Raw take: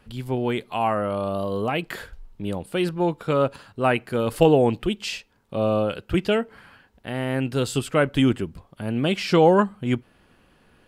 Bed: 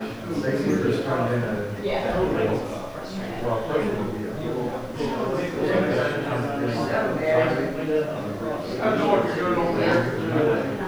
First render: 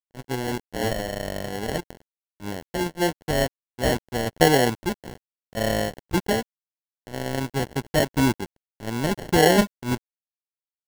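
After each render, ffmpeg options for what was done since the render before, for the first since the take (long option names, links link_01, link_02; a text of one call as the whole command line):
ffmpeg -i in.wav -af "acrusher=samples=36:mix=1:aa=0.000001,aeval=exprs='sgn(val(0))*max(abs(val(0))-0.0282,0)':channel_layout=same" out.wav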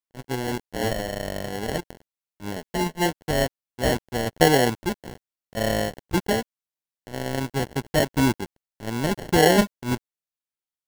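ffmpeg -i in.wav -filter_complex "[0:a]asettb=1/sr,asplit=3[link_01][link_02][link_03];[link_01]atrim=end=2.564[link_04];[link_02]atrim=start=2.56:end=3.06,asetpts=PTS-STARTPTS,afade=type=in:duration=0.004:curve=qsin,afade=type=out:start_time=0.496:duration=0.004:curve=qsin,aecho=1:1:4.7:0.65,atrim=end_sample=22050[link_05];[link_03]atrim=start=3.056[link_06];[link_04][link_05]acrossfade=duration=0.004:curve1=hsin:curve2=qsin[link_07];[link_07][link_06]acrossfade=duration=0.004:curve1=qsin:curve2=hsin" out.wav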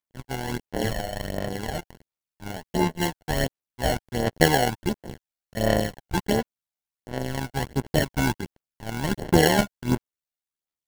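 ffmpeg -i in.wav -af "tremolo=f=76:d=0.621,aphaser=in_gain=1:out_gain=1:delay=1.4:decay=0.49:speed=1.4:type=sinusoidal" out.wav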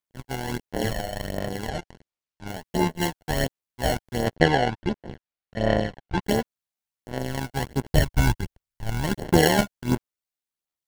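ffmpeg -i in.wav -filter_complex "[0:a]asplit=3[link_01][link_02][link_03];[link_01]afade=type=out:start_time=1.68:duration=0.02[link_04];[link_02]lowpass=6900,afade=type=in:start_time=1.68:duration=0.02,afade=type=out:start_time=2.46:duration=0.02[link_05];[link_03]afade=type=in:start_time=2.46:duration=0.02[link_06];[link_04][link_05][link_06]amix=inputs=3:normalize=0,asettb=1/sr,asplit=3[link_07][link_08][link_09];[link_07]atrim=end=4.364[link_10];[link_08]atrim=start=4.36:end=6.23,asetpts=PTS-STARTPTS,afade=type=in:duration=0.004:curve=qsin,afade=type=out:start_time=1.866:duration=0.004:curve=qsin,lowpass=3600[link_11];[link_09]atrim=start=6.226[link_12];[link_10][link_11]acrossfade=duration=0.004:curve1=hsin:curve2=qsin[link_13];[link_13][link_12]acrossfade=duration=0.004:curve1=qsin:curve2=hsin,asplit=3[link_14][link_15][link_16];[link_14]afade=type=out:start_time=7.89:duration=0.02[link_17];[link_15]asubboost=boost=4.5:cutoff=110,afade=type=in:start_time=7.89:duration=0.02,afade=type=out:start_time=9.02:duration=0.02[link_18];[link_16]afade=type=in:start_time=9.02:duration=0.02[link_19];[link_17][link_18][link_19]amix=inputs=3:normalize=0" out.wav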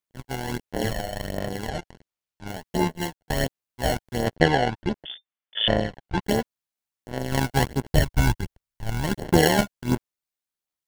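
ffmpeg -i in.wav -filter_complex "[0:a]asettb=1/sr,asplit=3[link_01][link_02][link_03];[link_01]atrim=end=5.054[link_04];[link_02]atrim=start=5.05:end=5.68,asetpts=PTS-STARTPTS,afade=type=in:duration=0.004:curve=qsin,afade=type=out:start_time=0.626:duration=0.004:curve=qsin,lowpass=frequency=3100:width_type=q:width=0.5098,lowpass=frequency=3100:width_type=q:width=0.6013,lowpass=frequency=3100:width_type=q:width=0.9,lowpass=frequency=3100:width_type=q:width=2.563,afreqshift=-3600[link_05];[link_03]atrim=start=5.676[link_06];[link_04][link_05]acrossfade=duration=0.004:curve1=hsin:curve2=qsin[link_07];[link_07][link_06]acrossfade=duration=0.004:curve1=qsin:curve2=hsin,asplit=4[link_08][link_09][link_10][link_11];[link_08]atrim=end=3.3,asetpts=PTS-STARTPTS,afade=type=out:start_time=2.72:duration=0.58:curve=qsin[link_12];[link_09]atrim=start=3.3:end=7.322,asetpts=PTS-STARTPTS,afade=type=in:duration=0.004:curve=hsin[link_13];[link_10]atrim=start=7.318:end=7.752,asetpts=PTS-STARTPTS,volume=6.5dB[link_14];[link_11]atrim=start=7.748[link_15];[link_12][link_13]concat=n=2:v=0:a=1[link_16];[link_16][link_14]acrossfade=duration=0.004:curve1=hsin:curve2=hsin[link_17];[link_17][link_15]acrossfade=duration=0.004:curve1=hsin:curve2=hsin" out.wav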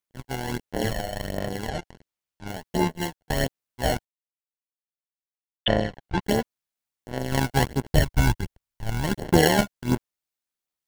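ffmpeg -i in.wav -filter_complex "[0:a]asplit=3[link_01][link_02][link_03];[link_01]atrim=end=4.05,asetpts=PTS-STARTPTS,afade=type=out:start_time=4.046:duration=0.004:curve=hsin[link_04];[link_02]atrim=start=4.05:end=5.66,asetpts=PTS-STARTPTS,volume=0[link_05];[link_03]atrim=start=5.66,asetpts=PTS-STARTPTS,afade=type=in:duration=0.004:curve=hsin[link_06];[link_04][link_05][link_06]concat=n=3:v=0:a=1" out.wav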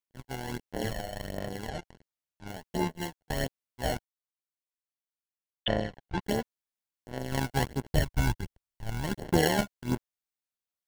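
ffmpeg -i in.wav -af "volume=-6.5dB" out.wav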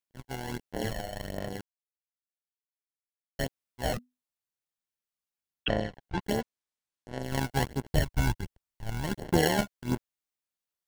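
ffmpeg -i in.wav -filter_complex "[0:a]asettb=1/sr,asplit=3[link_01][link_02][link_03];[link_01]atrim=end=3.934[link_04];[link_02]atrim=start=3.93:end=5.7,asetpts=PTS-STARTPTS,afade=type=in:duration=0.004:curve=qsin,afade=type=out:start_time=1.766:duration=0.004:curve=qsin,afreqshift=-250[link_05];[link_03]atrim=start=5.696[link_06];[link_04][link_05]acrossfade=duration=0.004:curve1=hsin:curve2=qsin[link_07];[link_07][link_06]acrossfade=duration=0.004:curve1=qsin:curve2=hsin,asettb=1/sr,asplit=3[link_08][link_09][link_10];[link_08]atrim=end=6.414[link_11];[link_09]atrim=start=6.41:end=7.23,asetpts=PTS-STARTPTS,afade=type=in:duration=0.004:curve=qsin,afade=type=out:start_time=0.816:duration=0.004:curve=qsin,lowpass=9600[link_12];[link_10]atrim=start=7.226[link_13];[link_11][link_12]acrossfade=duration=0.004:curve1=hsin:curve2=qsin[link_14];[link_14][link_13]acrossfade=duration=0.004:curve1=qsin:curve2=hsin,asplit=3[link_15][link_16][link_17];[link_15]atrim=end=1.61,asetpts=PTS-STARTPTS,afade=type=out:start_time=1.606:duration=0.004:curve=hsin[link_18];[link_16]atrim=start=1.61:end=3.39,asetpts=PTS-STARTPTS,volume=0[link_19];[link_17]atrim=start=3.39,asetpts=PTS-STARTPTS,afade=type=in:duration=0.004:curve=hsin[link_20];[link_18][link_19][link_20]concat=n=3:v=0:a=1" out.wav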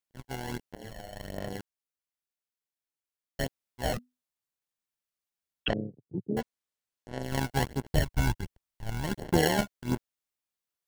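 ffmpeg -i in.wav -filter_complex "[0:a]asettb=1/sr,asplit=3[link_01][link_02][link_03];[link_01]atrim=end=5.734[link_04];[link_02]atrim=start=5.73:end=6.37,asetpts=PTS-STARTPTS,afade=type=in:duration=0.004:curve=qsin,afade=type=out:start_time=0.636:duration=0.004:curve=qsin,asuperpass=centerf=220:order=8:qfactor=0.66[link_05];[link_03]atrim=start=6.366[link_06];[link_04][link_05]acrossfade=duration=0.004:curve1=hsin:curve2=qsin[link_07];[link_07][link_06]acrossfade=duration=0.004:curve1=qsin:curve2=hsin,asplit=2[link_08][link_09];[link_08]atrim=end=0.75,asetpts=PTS-STARTPTS,afade=type=out:start_time=0.746:duration=0.004:curve=hsin:silence=0.125893[link_10];[link_09]atrim=start=0.75,asetpts=PTS-STARTPTS,afade=type=in:duration=0.76:silence=0.125893[link_11];[link_10][link_11]concat=n=2:v=0:a=1" out.wav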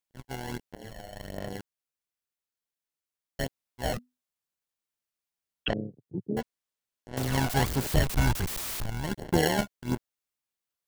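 ffmpeg -i in.wav -filter_complex "[0:a]asettb=1/sr,asplit=3[link_01][link_02][link_03];[link_01]atrim=end=7.174[link_04];[link_02]atrim=start=7.17:end=8.86,asetpts=PTS-STARTPTS,afade=type=in:duration=0.004:curve=qsin,afade=type=out:start_time=1.686:duration=0.004:curve=qsin,aeval=exprs='val(0)+0.5*0.0473*sgn(val(0))':channel_layout=same[link_05];[link_03]atrim=start=8.856[link_06];[link_04][link_05]acrossfade=duration=0.004:curve1=hsin:curve2=qsin[link_07];[link_07][link_06]acrossfade=duration=0.004:curve1=qsin:curve2=hsin" out.wav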